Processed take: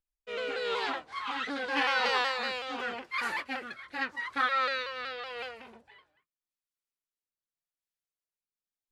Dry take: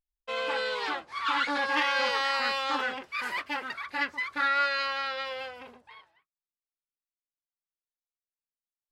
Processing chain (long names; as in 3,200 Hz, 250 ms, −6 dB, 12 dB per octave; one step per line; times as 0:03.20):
pitch shifter swept by a sawtooth −2 semitones, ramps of 187 ms
rotating-speaker cabinet horn 0.85 Hz
level +1.5 dB